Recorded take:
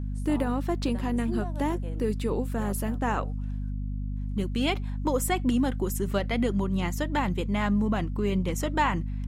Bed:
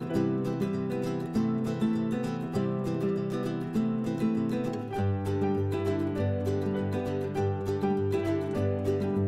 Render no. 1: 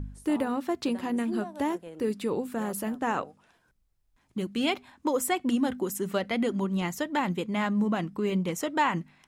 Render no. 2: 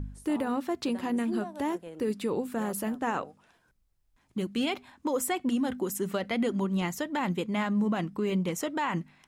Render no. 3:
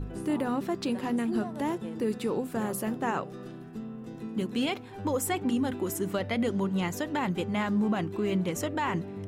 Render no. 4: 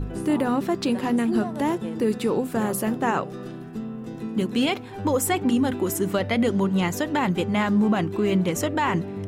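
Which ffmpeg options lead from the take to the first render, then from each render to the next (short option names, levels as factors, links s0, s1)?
-af "bandreject=f=50:t=h:w=4,bandreject=f=100:t=h:w=4,bandreject=f=150:t=h:w=4,bandreject=f=200:t=h:w=4,bandreject=f=250:t=h:w=4"
-af "alimiter=limit=0.0944:level=0:latency=1:release=57"
-filter_complex "[1:a]volume=0.282[s0];[0:a][s0]amix=inputs=2:normalize=0"
-af "volume=2.11"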